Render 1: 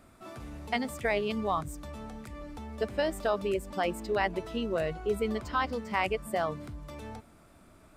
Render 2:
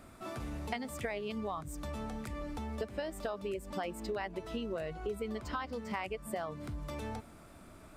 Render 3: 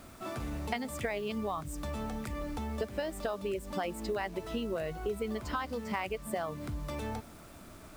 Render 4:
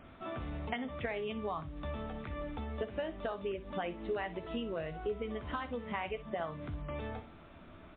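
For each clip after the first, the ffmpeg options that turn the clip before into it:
-af "acompressor=threshold=-38dB:ratio=6,volume=3dB"
-af "acrusher=bits=9:mix=0:aa=0.000001,volume=3dB"
-af "aecho=1:1:12|61:0.299|0.178,volume=-2.5dB" -ar 8000 -c:a libmp3lame -b:a 24k

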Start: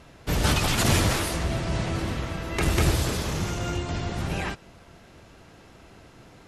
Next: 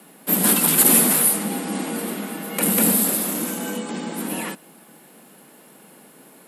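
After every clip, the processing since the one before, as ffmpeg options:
-af "afreqshift=140,aexciter=amount=13.6:drive=3.4:freq=8.6k"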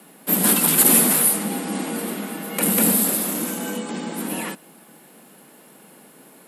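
-af anull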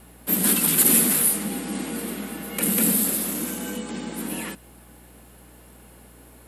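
-filter_complex "[0:a]acrossover=split=540|1200[a][b][c];[b]acompressor=threshold=-44dB:ratio=6[d];[a][d][c]amix=inputs=3:normalize=0,aeval=exprs='val(0)+0.00398*(sin(2*PI*60*n/s)+sin(2*PI*2*60*n/s)/2+sin(2*PI*3*60*n/s)/3+sin(2*PI*4*60*n/s)/4+sin(2*PI*5*60*n/s)/5)':c=same,volume=-2.5dB"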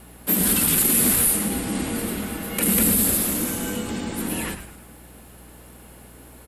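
-filter_complex "[0:a]alimiter=limit=-12dB:level=0:latency=1:release=53,asplit=6[a][b][c][d][e][f];[b]adelay=107,afreqshift=-140,volume=-10dB[g];[c]adelay=214,afreqshift=-280,volume=-17.3dB[h];[d]adelay=321,afreqshift=-420,volume=-24.7dB[i];[e]adelay=428,afreqshift=-560,volume=-32dB[j];[f]adelay=535,afreqshift=-700,volume=-39.3dB[k];[a][g][h][i][j][k]amix=inputs=6:normalize=0,volume=3dB"

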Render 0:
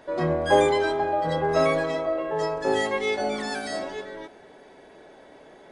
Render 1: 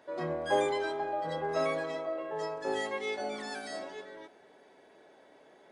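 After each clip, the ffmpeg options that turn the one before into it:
-af "highpass=f=220:p=1,volume=-8.5dB"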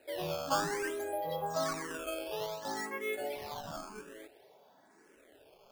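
-filter_complex "[0:a]acrusher=samples=13:mix=1:aa=0.000001:lfo=1:lforange=20.8:lforate=0.58,asplit=2[a][b];[b]afreqshift=0.94[c];[a][c]amix=inputs=2:normalize=1"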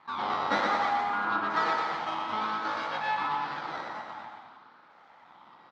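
-filter_complex "[0:a]aeval=exprs='abs(val(0))':c=same,highpass=270,equalizer=f=400:t=q:w=4:g=-5,equalizer=f=860:t=q:w=4:g=10,equalizer=f=1.3k:t=q:w=4:g=6,equalizer=f=2.7k:t=q:w=4:g=-7,lowpass=f=3.9k:w=0.5412,lowpass=f=3.9k:w=1.3066,asplit=2[a][b];[b]aecho=0:1:120|216|292.8|354.2|403.4:0.631|0.398|0.251|0.158|0.1[c];[a][c]amix=inputs=2:normalize=0,volume=7dB"

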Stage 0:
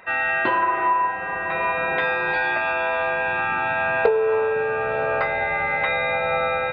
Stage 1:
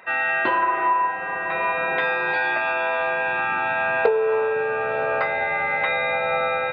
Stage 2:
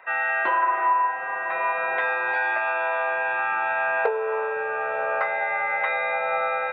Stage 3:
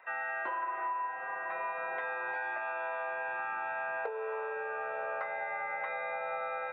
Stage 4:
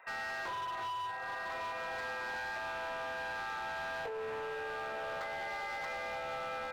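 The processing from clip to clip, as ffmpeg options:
-af "highpass=f=180:p=1"
-filter_complex "[0:a]acrossover=split=490 2500:gain=0.141 1 0.2[a][b][c];[a][b][c]amix=inputs=3:normalize=0"
-filter_complex "[0:a]acrossover=split=280|2000[a][b][c];[a]acompressor=threshold=-52dB:ratio=4[d];[b]acompressor=threshold=-26dB:ratio=4[e];[c]acompressor=threshold=-43dB:ratio=4[f];[d][e][f]amix=inputs=3:normalize=0,volume=-8dB"
-af "asoftclip=type=hard:threshold=-36.5dB"

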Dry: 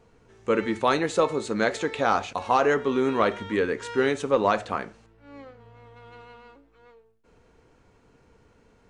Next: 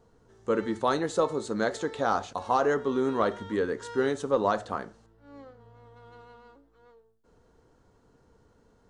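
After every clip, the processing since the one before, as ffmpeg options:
-af "equalizer=f=2.4k:w=2.6:g=-13,volume=-3dB"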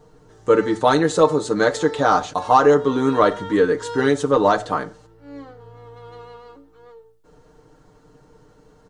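-af "aecho=1:1:6.6:0.71,volume=8.5dB"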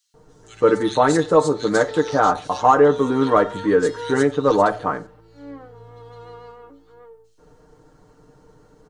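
-filter_complex "[0:a]acrossover=split=2900[a][b];[a]adelay=140[c];[c][b]amix=inputs=2:normalize=0"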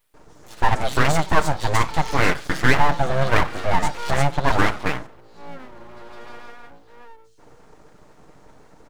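-filter_complex "[0:a]asplit=2[a][b];[b]acompressor=threshold=-24dB:ratio=6,volume=-2dB[c];[a][c]amix=inputs=2:normalize=0,aeval=exprs='abs(val(0))':c=same,volume=-1dB"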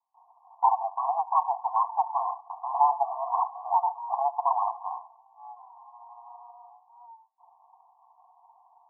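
-af "asuperpass=centerf=880:order=20:qfactor=2"

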